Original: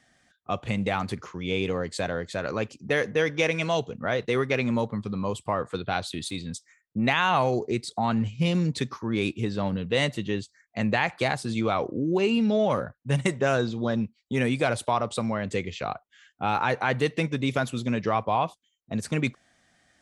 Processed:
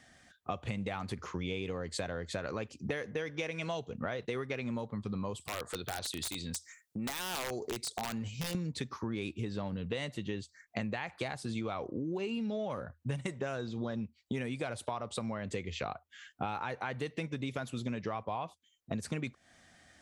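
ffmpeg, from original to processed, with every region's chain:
ffmpeg -i in.wav -filter_complex "[0:a]asettb=1/sr,asplit=3[link_01][link_02][link_03];[link_01]atrim=end=5.404[link_04];[link_02]atrim=start=5.4:end=8.55,asetpts=PTS-STARTPTS,afade=type=in:duration=0.004:curve=qsin,afade=type=out:start_time=3.146:duration=0.004:curve=qsin,bass=frequency=250:gain=-5,treble=frequency=4000:gain=9,acompressor=threshold=-43dB:ratio=2:attack=3.2:release=140:knee=1:detection=peak,aeval=exprs='(mod(29.9*val(0)+1,2)-1)/29.9':channel_layout=same[link_05];[link_03]atrim=start=8.546[link_06];[link_04][link_05]acrossfade=duration=0.004:curve1=hsin:curve2=qsin[link_07];[link_07][link_06]acrossfade=duration=0.004:curve1=qsin:curve2=hsin,equalizer=frequency=80:width_type=o:width=0.31:gain=7,acompressor=threshold=-36dB:ratio=12,volume=3dB" out.wav

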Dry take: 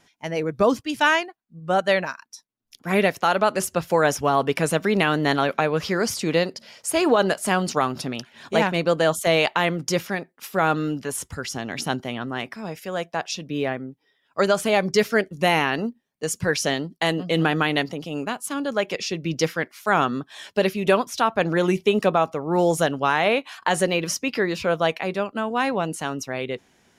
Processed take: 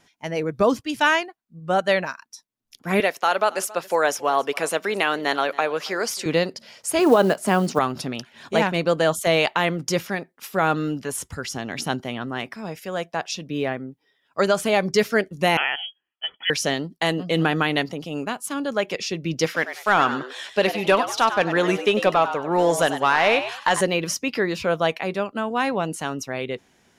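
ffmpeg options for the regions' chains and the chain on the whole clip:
ffmpeg -i in.wav -filter_complex "[0:a]asettb=1/sr,asplit=3[link_01][link_02][link_03];[link_01]atrim=end=3.004[link_04];[link_02]atrim=start=3:end=6.26,asetpts=PTS-STARTPTS,afade=type=in:duration=0.004:curve=qsin,afade=type=out:start_time=3.256:duration=0.004:curve=qsin,highpass=410,aecho=1:1:275:0.0891,atrim=end_sample=143766[link_05];[link_03]atrim=start=6.256[link_06];[link_04][link_05]acrossfade=duration=0.004:curve1=hsin:curve2=qsin[link_07];[link_07][link_06]acrossfade=duration=0.004:curve1=qsin:curve2=hsin,asettb=1/sr,asplit=3[link_08][link_09][link_10];[link_08]atrim=end=6.994[link_11];[link_09]atrim=start=6.99:end=7.79,asetpts=PTS-STARTPTS,afade=type=in:duration=0.004:curve=qsin,afade=type=out:start_time=0.796:duration=0.004:curve=qsin,highpass=frequency=130:width=0.5412,highpass=frequency=130:width=1.3066,tiltshelf=frequency=1300:gain=4,acrusher=bits=7:mode=log:mix=0:aa=0.000001[link_12];[link_10]atrim=start=7.786[link_13];[link_11][link_12]acrossfade=duration=0.004:curve1=hsin:curve2=qsin[link_14];[link_14][link_13]acrossfade=duration=0.004:curve1=qsin:curve2=hsin,asettb=1/sr,asplit=3[link_15][link_16][link_17];[link_15]atrim=end=15.574[link_18];[link_16]atrim=start=15.57:end=16.5,asetpts=PTS-STARTPTS,afade=type=in:duration=0.004:curve=qsin,afade=type=out:start_time=0.926:duration=0.004:curve=qsin,highpass=frequency=520:poles=1,aecho=1:1:1.9:0.38,atrim=end_sample=41013,lowpass=frequency=3000:width_type=q:width=0.5098,lowpass=frequency=3000:width_type=q:width=0.6013,lowpass=frequency=3000:width_type=q:width=0.9,lowpass=frequency=3000:width_type=q:width=2.563,afreqshift=-3500[link_19];[link_17]atrim=start=16.496[link_20];[link_18][link_19]acrossfade=duration=0.004:curve1=hsin:curve2=qsin[link_21];[link_21][link_20]acrossfade=duration=0.004:curve1=qsin:curve2=hsin,asettb=1/sr,asplit=3[link_22][link_23][link_24];[link_22]atrim=end=19.454[link_25];[link_23]atrim=start=19.45:end=23.81,asetpts=PTS-STARTPTS,afade=type=in:duration=0.004:curve=qsin,afade=type=out:start_time=4.356:duration=0.004:curve=qsin,asplit=2[link_26][link_27];[link_27]highpass=frequency=720:poles=1,volume=9dB,asoftclip=type=tanh:threshold=-7dB[link_28];[link_26][link_28]amix=inputs=2:normalize=0,lowpass=frequency=6300:poles=1,volume=-6dB,asplit=4[link_29][link_30][link_31][link_32];[link_30]adelay=97,afreqshift=120,volume=-10.5dB[link_33];[link_31]adelay=194,afreqshift=240,volume=-20.7dB[link_34];[link_32]adelay=291,afreqshift=360,volume=-30.8dB[link_35];[link_29][link_33][link_34][link_35]amix=inputs=4:normalize=0,atrim=end_sample=192276[link_36];[link_24]atrim=start=23.806[link_37];[link_25][link_36]acrossfade=duration=0.004:curve1=hsin:curve2=qsin[link_38];[link_38][link_37]acrossfade=duration=0.004:curve1=qsin:curve2=hsin" out.wav

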